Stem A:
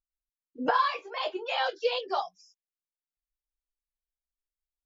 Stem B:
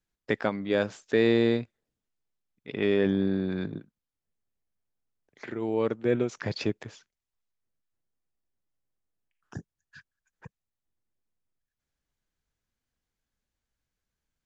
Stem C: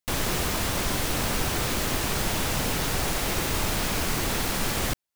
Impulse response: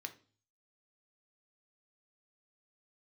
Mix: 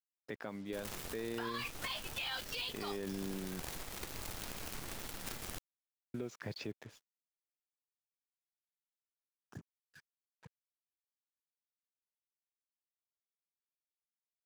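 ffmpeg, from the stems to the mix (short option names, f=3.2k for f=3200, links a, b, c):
-filter_complex "[0:a]highpass=1.2k,equalizer=f=3.7k:w=0.63:g=6,adelay=700,volume=1.5dB[a];[1:a]highpass=48,acrusher=bits=7:mix=0:aa=0.5,volume=-10.5dB,asplit=3[b][c][d];[b]atrim=end=3.6,asetpts=PTS-STARTPTS,afade=t=out:st=3.596:d=0.004:c=hsin[e];[c]atrim=start=3.6:end=6.14,asetpts=PTS-STARTPTS,volume=0[f];[d]atrim=start=6.14,asetpts=PTS-STARTPTS,afade=t=in:d=0.004:c=hsin[g];[e][f][g]concat=n=3:v=0:a=1[h];[2:a]adelay=650,volume=-16.5dB[i];[a][i]amix=inputs=2:normalize=0,acrusher=bits=7:dc=4:mix=0:aa=0.000001,alimiter=level_in=0.5dB:limit=-24dB:level=0:latency=1:release=353,volume=-0.5dB,volume=0dB[j];[h][j]amix=inputs=2:normalize=0,alimiter=level_in=6.5dB:limit=-24dB:level=0:latency=1:release=72,volume=-6.5dB"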